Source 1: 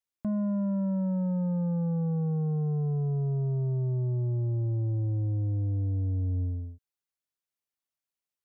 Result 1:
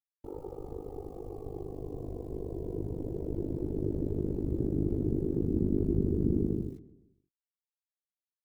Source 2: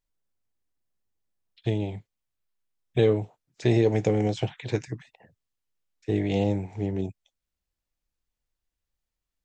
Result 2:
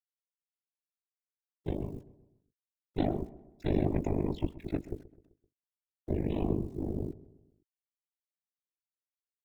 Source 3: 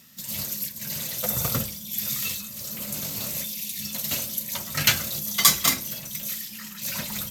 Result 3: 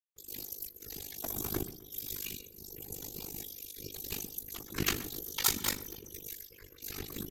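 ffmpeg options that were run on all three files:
-filter_complex "[0:a]afftdn=nr=34:nf=-39,asubboost=boost=8:cutoff=98,aeval=exprs='val(0)*sin(2*PI*210*n/s)':c=same,acrusher=bits=9:mix=0:aa=0.000001,afftfilt=real='hypot(re,im)*cos(2*PI*random(0))':imag='hypot(re,im)*sin(2*PI*random(1))':win_size=512:overlap=0.75,tremolo=f=50:d=0.919,asplit=2[a][b];[b]adelay=129,lowpass=f=1.8k:p=1,volume=-17dB,asplit=2[c][d];[d]adelay=129,lowpass=f=1.8k:p=1,volume=0.48,asplit=2[e][f];[f]adelay=129,lowpass=f=1.8k:p=1,volume=0.48,asplit=2[g][h];[h]adelay=129,lowpass=f=1.8k:p=1,volume=0.48[i];[c][e][g][i]amix=inputs=4:normalize=0[j];[a][j]amix=inputs=2:normalize=0,volume=2dB"

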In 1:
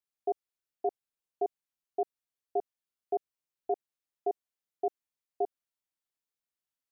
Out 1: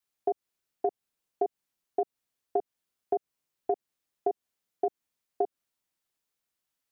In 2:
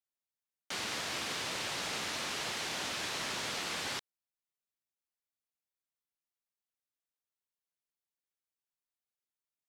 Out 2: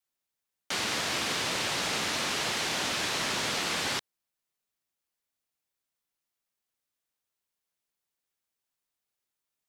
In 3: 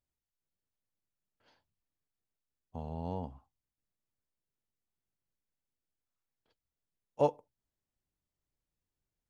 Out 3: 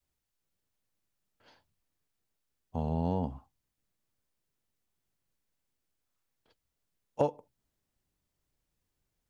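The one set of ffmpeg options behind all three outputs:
-af "adynamicequalizer=threshold=0.00501:dfrequency=210:dqfactor=0.76:tfrequency=210:tqfactor=0.76:attack=5:release=100:ratio=0.375:range=2:mode=boostabove:tftype=bell,acompressor=threshold=-31dB:ratio=10,volume=7dB"

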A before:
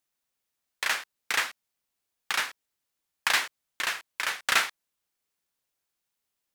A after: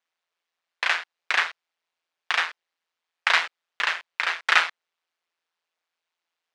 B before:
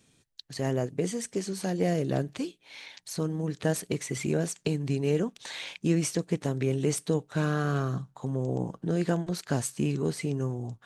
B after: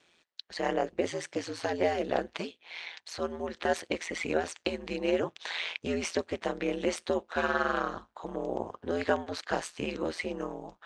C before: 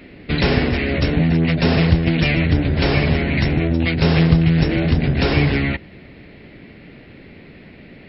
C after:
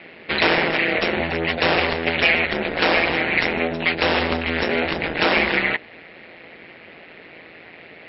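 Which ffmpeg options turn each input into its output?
-af "highpass=550,lowpass=3.6k,aeval=exprs='val(0)*sin(2*PI*84*n/s)':c=same,volume=8.5dB"

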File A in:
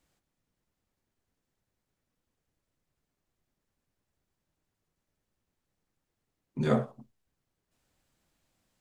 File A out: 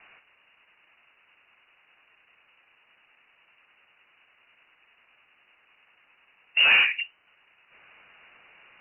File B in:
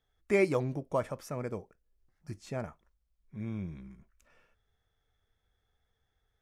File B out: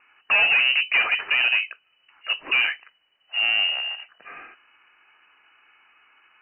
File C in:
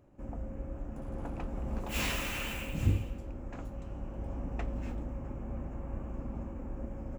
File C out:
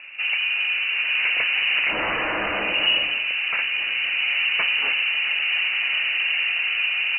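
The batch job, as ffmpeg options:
-filter_complex "[0:a]asplit=2[a][b];[b]highpass=f=720:p=1,volume=35dB,asoftclip=type=tanh:threshold=-13dB[c];[a][c]amix=inputs=2:normalize=0,lowpass=f=1.5k:p=1,volume=-6dB,lowpass=f=2.6k:t=q:w=0.5098,lowpass=f=2.6k:t=q:w=0.6013,lowpass=f=2.6k:t=q:w=0.9,lowpass=f=2.6k:t=q:w=2.563,afreqshift=-3000,volume=2dB"

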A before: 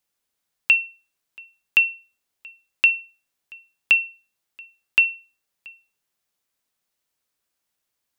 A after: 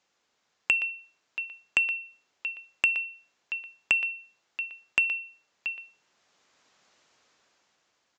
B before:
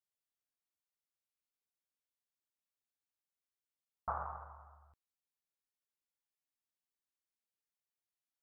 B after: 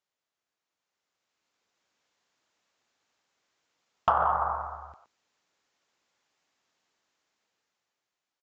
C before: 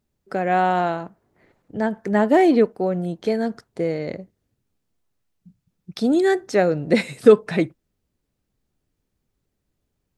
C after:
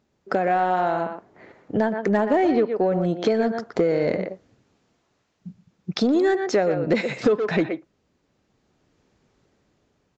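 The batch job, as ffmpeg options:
-filter_complex "[0:a]asplit=2[a][b];[b]adelay=120,highpass=300,lowpass=3.4k,asoftclip=type=hard:threshold=-9.5dB,volume=-10dB[c];[a][c]amix=inputs=2:normalize=0,apsyclip=5dB,highpass=f=160:p=1,lowshelf=f=460:g=-5,dynaudnorm=f=300:g=9:m=12dB,asplit=2[d][e];[e]asoftclip=type=tanh:threshold=-18dB,volume=-5dB[f];[d][f]amix=inputs=2:normalize=0,acompressor=threshold=-24dB:ratio=4,highshelf=f=2k:g=-8,aresample=16000,asoftclip=type=hard:threshold=-16dB,aresample=44100,volume=5dB"

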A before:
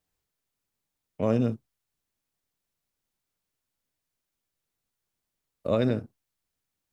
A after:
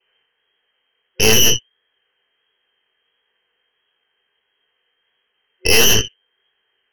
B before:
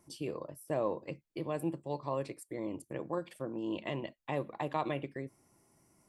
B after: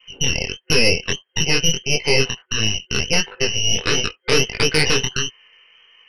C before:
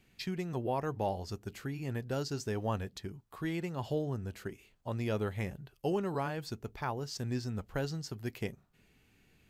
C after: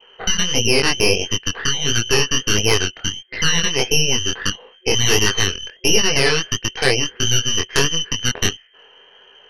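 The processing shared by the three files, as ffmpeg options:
-filter_complex "[0:a]asplit=2[a][b];[b]acompressor=threshold=-43dB:ratio=8,volume=2.5dB[c];[a][c]amix=inputs=2:normalize=0,adynamicequalizer=threshold=0.00158:dfrequency=1500:dqfactor=3.7:tfrequency=1500:tqfactor=3.7:attack=5:release=100:ratio=0.375:range=2:mode=boostabove:tftype=bell,lowpass=f=2.7k:t=q:w=0.5098,lowpass=f=2.7k:t=q:w=0.6013,lowpass=f=2.7k:t=q:w=0.9,lowpass=f=2.7k:t=q:w=2.563,afreqshift=-3200,aeval=exprs='0.282*(cos(1*acos(clip(val(0)/0.282,-1,1)))-cos(1*PI/2))+0.1*(cos(4*acos(clip(val(0)/0.282,-1,1)))-cos(4*PI/2))+0.00355*(cos(5*acos(clip(val(0)/0.282,-1,1)))-cos(5*PI/2))+0.00282*(cos(7*acos(clip(val(0)/0.282,-1,1)))-cos(7*PI/2))+0.0708*(cos(8*acos(clip(val(0)/0.282,-1,1)))-cos(8*PI/2))':c=same,flanger=delay=18:depth=6.4:speed=1.5,apsyclip=19dB,superequalizer=7b=3.16:11b=2,volume=-5.5dB"

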